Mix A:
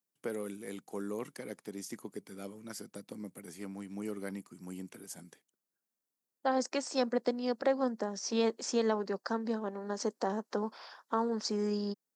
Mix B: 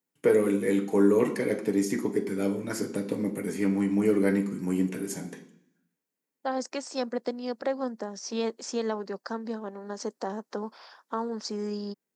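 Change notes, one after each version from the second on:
first voice +11.0 dB; reverb: on, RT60 0.65 s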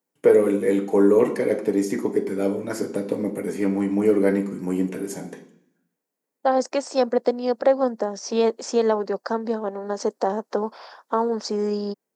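second voice +4.0 dB; master: add peaking EQ 600 Hz +8 dB 1.8 oct

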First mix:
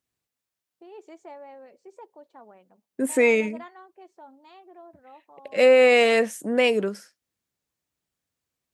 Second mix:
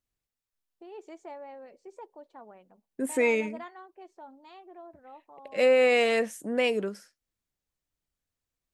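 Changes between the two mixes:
second voice -5.5 dB; master: remove high-pass 100 Hz 12 dB/octave

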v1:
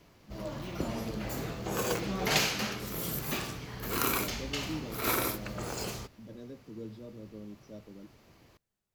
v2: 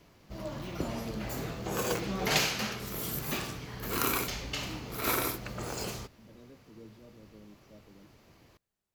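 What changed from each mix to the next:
first voice -8.0 dB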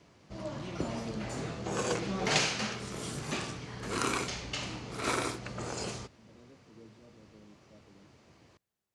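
first voice -3.5 dB; background: add Chebyshev low-pass 9.6 kHz, order 5; master: add high-pass 70 Hz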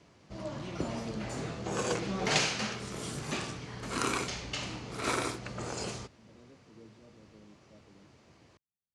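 second voice: muted

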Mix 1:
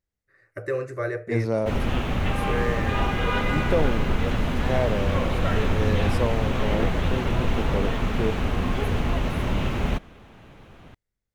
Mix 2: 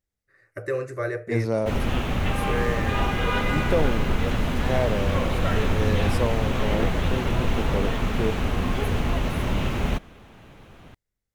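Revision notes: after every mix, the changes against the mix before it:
master: add treble shelf 6.2 kHz +5.5 dB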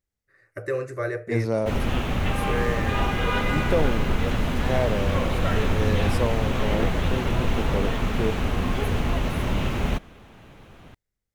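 no change

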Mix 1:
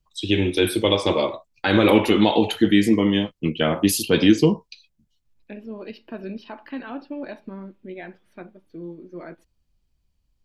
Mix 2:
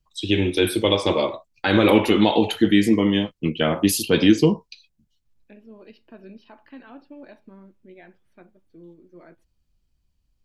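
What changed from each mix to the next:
second voice -10.0 dB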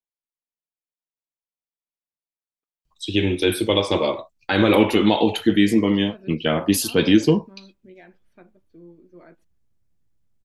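first voice: entry +2.85 s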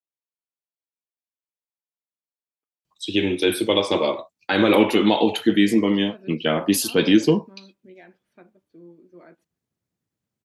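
master: add high-pass 160 Hz 12 dB/octave

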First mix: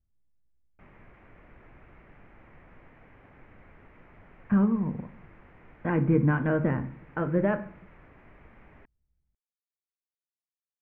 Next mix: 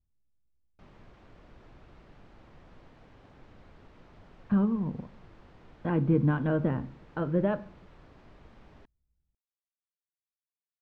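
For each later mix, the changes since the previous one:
speech: send -6.0 dB; master: add resonant high shelf 3.1 kHz +12.5 dB, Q 3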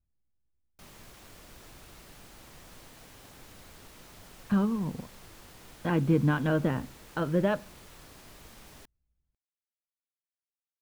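speech: send -8.0 dB; master: remove tape spacing loss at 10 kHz 37 dB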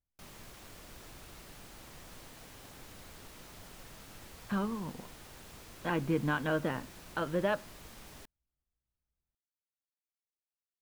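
speech: add bass shelf 330 Hz -11.5 dB; background: entry -0.60 s

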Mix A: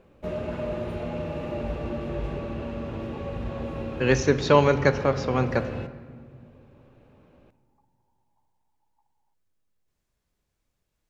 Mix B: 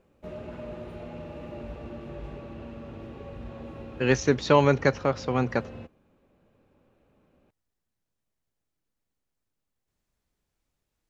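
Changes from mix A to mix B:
first sound -7.0 dB; second sound: muted; reverb: off

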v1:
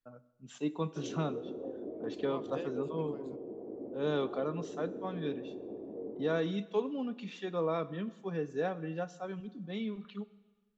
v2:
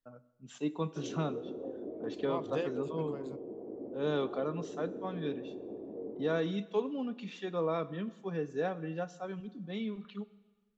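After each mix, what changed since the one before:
second voice +6.5 dB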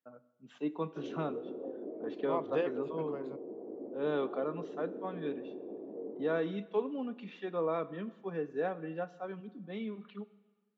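second voice +3.5 dB; master: add band-pass 210–2600 Hz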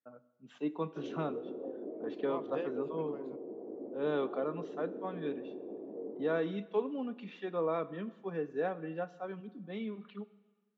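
second voice -6.5 dB

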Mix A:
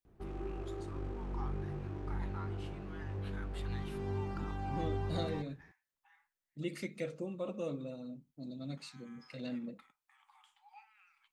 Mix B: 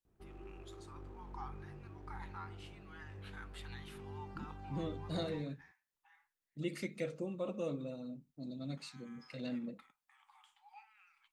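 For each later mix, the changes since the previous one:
background -10.5 dB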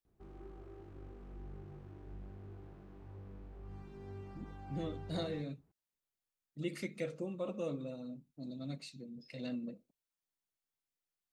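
first voice: muted

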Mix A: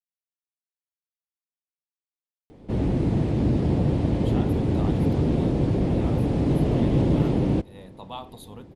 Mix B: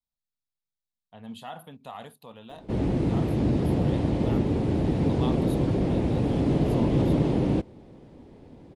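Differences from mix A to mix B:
speech: entry -2.90 s; master: add bass shelf 150 Hz -4.5 dB

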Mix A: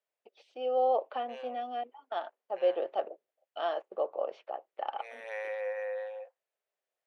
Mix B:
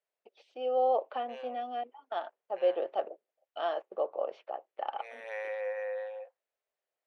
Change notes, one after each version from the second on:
master: add treble shelf 6.4 kHz -4.5 dB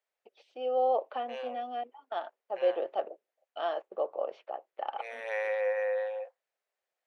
second voice +5.5 dB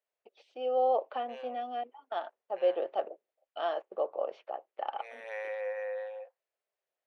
second voice -6.0 dB

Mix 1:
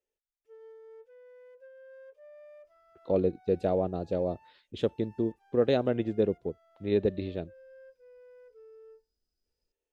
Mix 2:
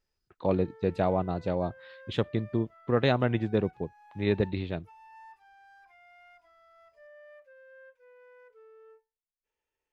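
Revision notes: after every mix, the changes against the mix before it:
speech: entry -2.65 s; master: add ten-band graphic EQ 125 Hz +8 dB, 500 Hz -5 dB, 1 kHz +10 dB, 2 kHz +7 dB, 4 kHz +3 dB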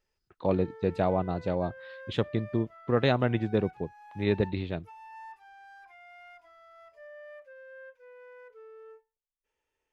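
background +5.0 dB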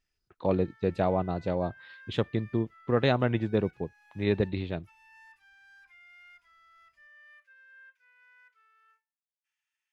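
background: add high-pass 1.4 kHz 24 dB/octave

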